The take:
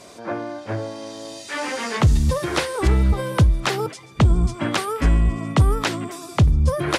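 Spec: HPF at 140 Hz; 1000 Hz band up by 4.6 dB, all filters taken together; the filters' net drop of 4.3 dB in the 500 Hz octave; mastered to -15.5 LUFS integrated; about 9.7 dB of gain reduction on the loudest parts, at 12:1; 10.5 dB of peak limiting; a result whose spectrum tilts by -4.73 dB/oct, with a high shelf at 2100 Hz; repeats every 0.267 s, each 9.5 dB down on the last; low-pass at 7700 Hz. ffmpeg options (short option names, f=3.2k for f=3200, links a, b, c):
-af "highpass=140,lowpass=7.7k,equalizer=f=500:t=o:g=-7.5,equalizer=f=1k:t=o:g=8.5,highshelf=f=2.1k:g=-4,acompressor=threshold=-24dB:ratio=12,alimiter=limit=-20.5dB:level=0:latency=1,aecho=1:1:267|534|801|1068:0.335|0.111|0.0365|0.012,volume=15.5dB"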